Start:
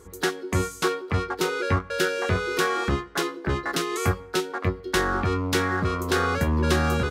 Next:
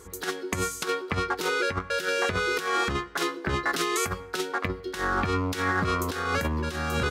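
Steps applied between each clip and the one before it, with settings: tilt shelf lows -3 dB; compressor with a negative ratio -26 dBFS, ratio -0.5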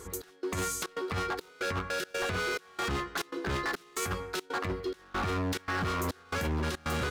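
peak limiter -20.5 dBFS, peak gain reduction 9 dB; hard clipper -30.5 dBFS, distortion -9 dB; trance gate "xx..xxxx.xx" 140 bpm -24 dB; trim +2 dB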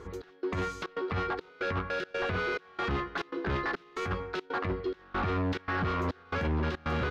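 distance through air 250 m; trim +2 dB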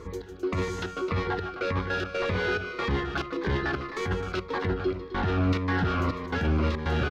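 on a send: loudspeakers at several distances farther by 52 m -11 dB, 89 m -10 dB; on the sum: Shepard-style phaser falling 1.8 Hz; trim +5 dB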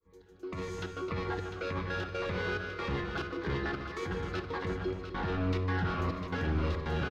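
fade-in on the opening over 0.81 s; delay 700 ms -8.5 dB; simulated room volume 1500 m³, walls mixed, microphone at 0.63 m; trim -7 dB

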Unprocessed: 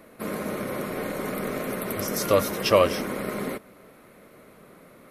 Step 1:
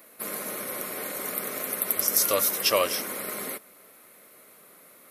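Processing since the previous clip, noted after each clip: RIAA curve recording; trim -4 dB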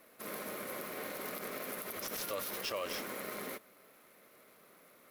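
median filter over 5 samples; peak limiter -23 dBFS, peak gain reduction 11.5 dB; trim -5.5 dB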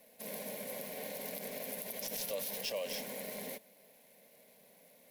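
static phaser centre 340 Hz, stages 6; trim +1.5 dB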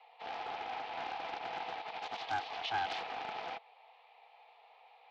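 mistuned SSB +240 Hz 280–3500 Hz; loudspeaker Doppler distortion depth 0.22 ms; trim +4.5 dB

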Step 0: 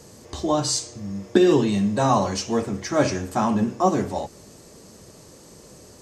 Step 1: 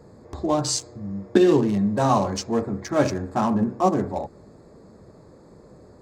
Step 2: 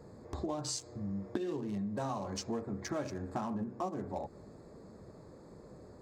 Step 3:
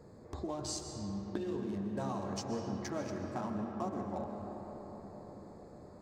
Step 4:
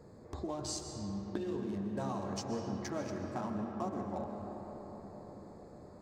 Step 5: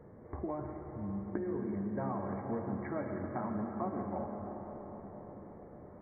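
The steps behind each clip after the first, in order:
local Wiener filter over 15 samples
compression 12:1, threshold -29 dBFS, peak gain reduction 18.5 dB; trim -4.5 dB
reverberation RT60 5.2 s, pre-delay 90 ms, DRR 3 dB; trim -2.5 dB
no audible change
brick-wall FIR low-pass 2.3 kHz; trim +1 dB

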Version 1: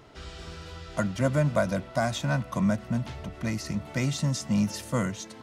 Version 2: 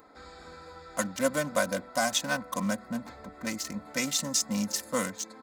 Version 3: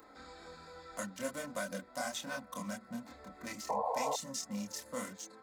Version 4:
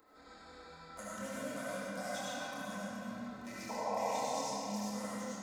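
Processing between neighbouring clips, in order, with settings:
local Wiener filter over 15 samples; RIAA curve recording; comb 3.9 ms, depth 65%
chorus voices 4, 0.6 Hz, delay 27 ms, depth 2.9 ms; painted sound noise, 3.69–4.16 s, 440–1100 Hz -24 dBFS; three bands compressed up and down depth 40%; trim -8 dB
algorithmic reverb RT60 3.3 s, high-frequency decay 0.7×, pre-delay 35 ms, DRR -8.5 dB; trim -9 dB

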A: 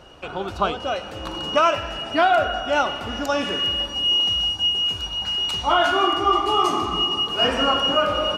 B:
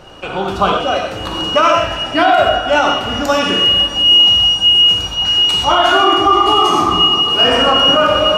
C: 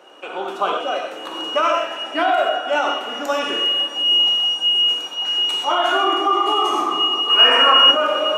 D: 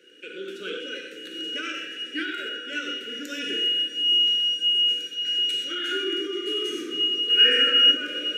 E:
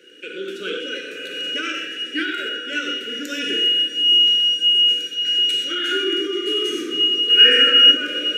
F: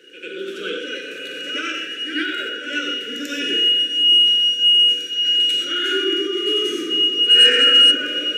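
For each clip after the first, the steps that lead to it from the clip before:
on a send at -1 dB: reverberation, pre-delay 3 ms; on the sum: loudness maximiser +8 dB; trim -1 dB
high-pass 300 Hz 24 dB/octave; peaking EQ 4.7 kHz -8 dB 0.48 oct; time-frequency box 7.30–7.91 s, 870–3000 Hz +8 dB; trim -6.5 dB
Chebyshev band-stop 490–1500 Hz, order 4; trim -4.5 dB
spectral replace 1.09–1.50 s, 220–2700 Hz before; trim +6 dB
saturation -5 dBFS, distortion -21 dB; reverse echo 92 ms -8.5 dB

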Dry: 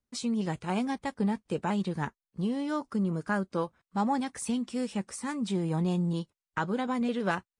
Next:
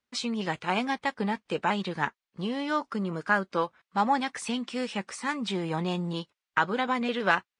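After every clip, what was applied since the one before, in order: low-pass 2.8 kHz 12 dB/octave; tilt EQ +4 dB/octave; trim +6.5 dB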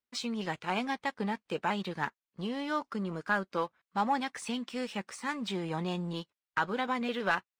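waveshaping leveller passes 1; trim -8 dB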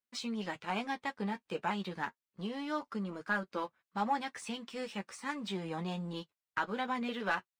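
flange 0.29 Hz, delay 9 ms, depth 1.6 ms, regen -33%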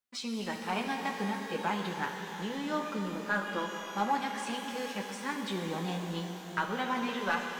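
pitch-shifted reverb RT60 3.8 s, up +12 st, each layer -8 dB, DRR 3 dB; trim +1.5 dB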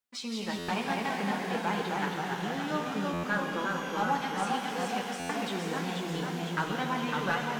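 ever faster or slower copies 162 ms, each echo -1 st, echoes 3; buffer glitch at 0.58/3.13/5.19 s, samples 512, times 8

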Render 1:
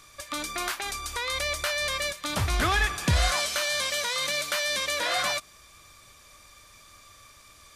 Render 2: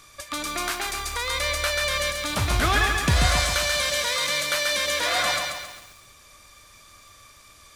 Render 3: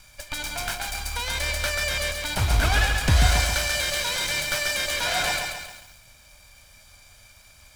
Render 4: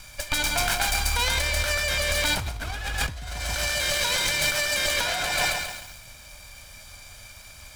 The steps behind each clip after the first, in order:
bit-crushed delay 136 ms, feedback 55%, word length 8-bit, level -4 dB; trim +2 dB
comb filter that takes the minimum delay 1.3 ms; bass shelf 79 Hz +6 dB
compressor with a negative ratio -29 dBFS, ratio -1; trim +2.5 dB

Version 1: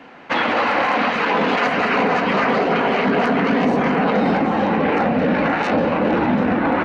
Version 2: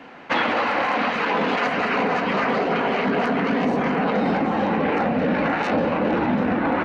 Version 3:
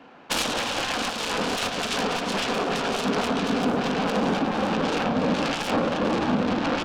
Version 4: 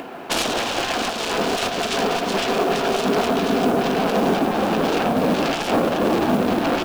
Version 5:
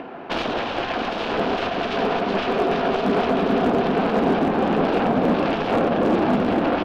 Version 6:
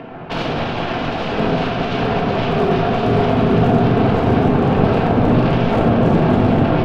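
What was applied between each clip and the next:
gain riding within 4 dB 0.5 s; trim -3.5 dB
self-modulated delay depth 0.47 ms; peaking EQ 2 kHz -7.5 dB 0.37 oct; upward expansion 1.5:1, over -31 dBFS
upward compressor, threshold -30 dBFS; small resonant body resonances 380/670 Hz, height 8 dB, ringing for 35 ms; modulation noise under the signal 25 dB; trim +2.5 dB
distance through air 300 m; wavefolder -12 dBFS; on a send: delay 806 ms -6.5 dB
octave divider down 1 oct, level +1 dB; reverberation RT60 1.1 s, pre-delay 4 ms, DRR -1 dB; trim -1 dB

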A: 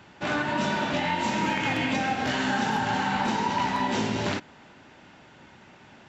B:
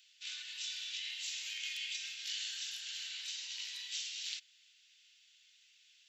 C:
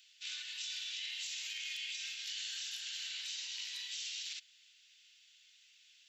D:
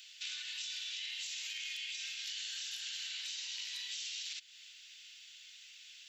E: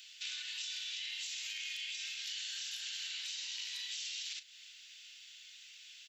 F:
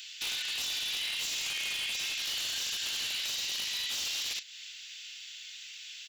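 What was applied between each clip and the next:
inverse Chebyshev high-pass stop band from 720 Hz, stop band 70 dB; trim -1.5 dB
peak limiter -33.5 dBFS, peak gain reduction 9.5 dB; trim +1.5 dB
compression 3:1, threshold -52 dBFS, peak gain reduction 10 dB; trim +9.5 dB
doubling 36 ms -13 dB
wavefolder -37.5 dBFS; trim +9 dB

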